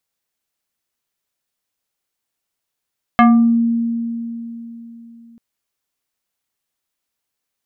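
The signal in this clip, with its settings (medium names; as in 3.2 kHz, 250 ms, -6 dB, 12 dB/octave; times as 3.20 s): FM tone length 2.19 s, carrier 232 Hz, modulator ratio 4.11, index 1.7, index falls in 0.45 s exponential, decay 3.61 s, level -5.5 dB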